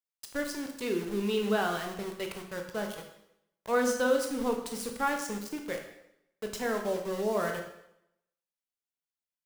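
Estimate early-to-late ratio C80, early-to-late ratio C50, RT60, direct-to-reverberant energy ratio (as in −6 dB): 9.0 dB, 6.5 dB, 0.80 s, 3.0 dB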